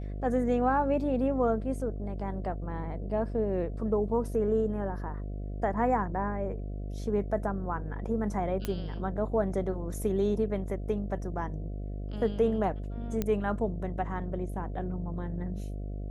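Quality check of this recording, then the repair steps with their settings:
mains buzz 50 Hz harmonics 14 −36 dBFS
0:08.65: click −17 dBFS
0:13.22: click −16 dBFS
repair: click removal
hum removal 50 Hz, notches 14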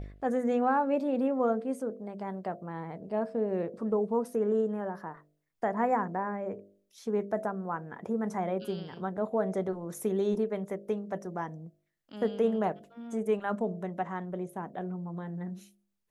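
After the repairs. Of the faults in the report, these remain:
0:13.22: click

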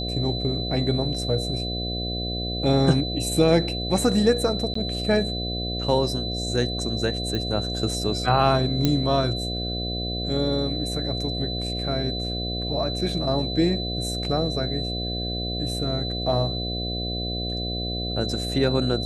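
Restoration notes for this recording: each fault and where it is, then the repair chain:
mains buzz 60 Hz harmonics 12 −30 dBFS
whistle 4,000 Hz −30 dBFS
0:04.74–0:04.75: drop-out 14 ms
0:07.35: click −16 dBFS
0:08.85: click −7 dBFS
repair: click removal
notch filter 4,000 Hz, Q 30
hum removal 60 Hz, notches 12
repair the gap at 0:04.74, 14 ms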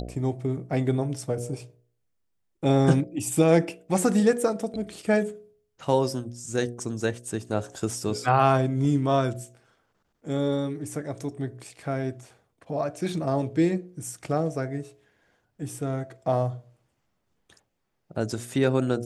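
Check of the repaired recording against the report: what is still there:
none of them is left

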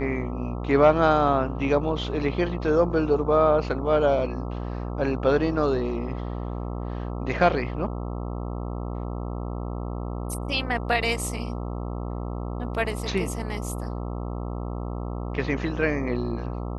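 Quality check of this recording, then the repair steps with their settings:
mains buzz 60 Hz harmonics 22 −31 dBFS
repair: hum removal 60 Hz, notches 22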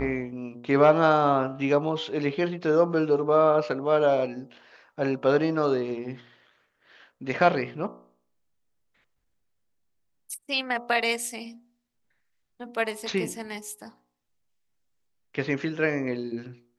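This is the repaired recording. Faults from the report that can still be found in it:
none of them is left

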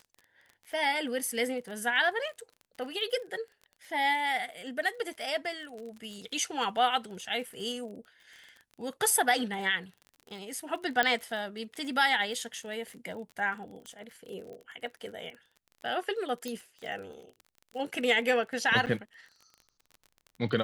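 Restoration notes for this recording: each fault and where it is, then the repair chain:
surface crackle 34 per second −40 dBFS
0:11.03: click −11 dBFS
0:13.86: click −28 dBFS
0:16.48: click −22 dBFS
0:18.86–0:18.87: drop-out 7.6 ms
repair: click removal
repair the gap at 0:18.86, 7.6 ms

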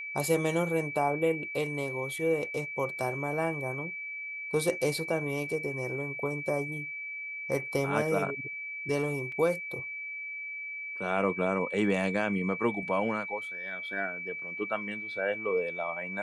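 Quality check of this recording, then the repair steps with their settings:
whistle 2,300 Hz −36 dBFS
0:09.32: drop-out 3.2 ms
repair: notch filter 2,300 Hz, Q 30
repair the gap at 0:09.32, 3.2 ms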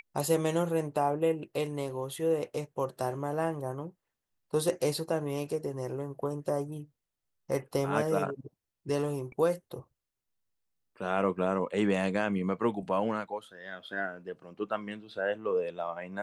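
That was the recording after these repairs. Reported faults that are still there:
none of them is left

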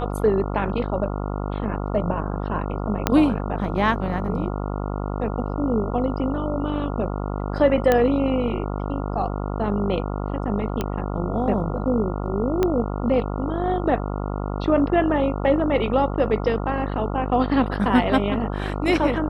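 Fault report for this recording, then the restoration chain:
mains buzz 50 Hz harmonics 28 −27 dBFS
0:03.07: click −3 dBFS
0:07.92: click −6 dBFS
0:10.81: click −11 dBFS
0:12.63: click −8 dBFS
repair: click removal
hum removal 50 Hz, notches 28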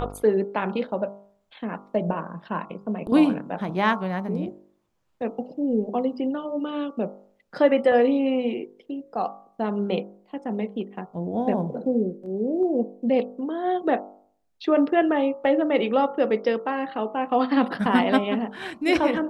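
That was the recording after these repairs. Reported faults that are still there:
0:03.07: click
0:12.63: click

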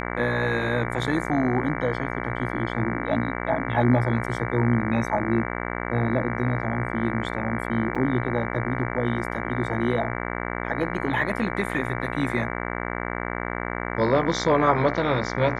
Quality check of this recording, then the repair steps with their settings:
mains buzz 60 Hz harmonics 38 −30 dBFS
0:07.95–0:07.96: drop-out 5.4 ms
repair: hum removal 60 Hz, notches 38
repair the gap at 0:07.95, 5.4 ms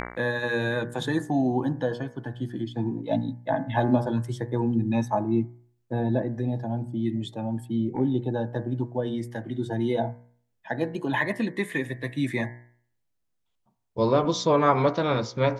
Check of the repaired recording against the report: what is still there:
none of them is left

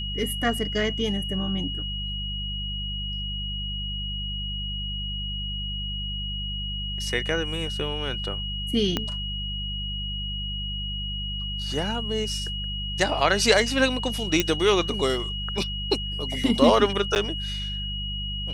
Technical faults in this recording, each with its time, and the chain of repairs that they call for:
mains hum 50 Hz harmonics 4 −33 dBFS
whistle 2,900 Hz −31 dBFS
0:08.97: click −10 dBFS
0:14.40: click −6 dBFS
0:17.15–0:17.16: drop-out 9.7 ms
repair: click removal
hum removal 50 Hz, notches 4
notch filter 2,900 Hz, Q 30
repair the gap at 0:17.15, 9.7 ms

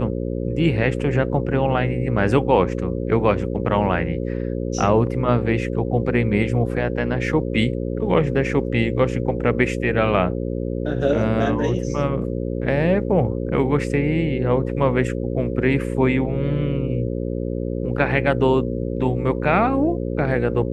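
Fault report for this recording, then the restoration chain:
mains buzz 60 Hz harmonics 9 −25 dBFS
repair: hum removal 60 Hz, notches 9

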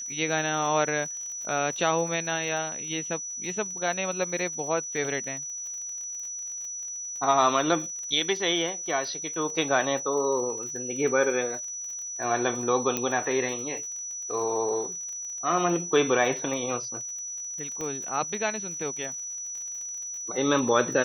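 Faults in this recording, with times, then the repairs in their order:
surface crackle 41 per second −36 dBFS
whistle 5,900 Hz −33 dBFS
0:12.97: click −11 dBFS
0:17.81: click −21 dBFS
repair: click removal
notch filter 5,900 Hz, Q 30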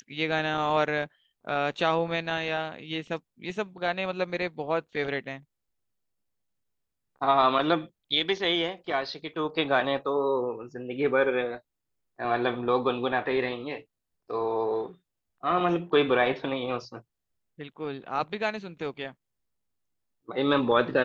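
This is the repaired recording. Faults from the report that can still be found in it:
0:17.81: click

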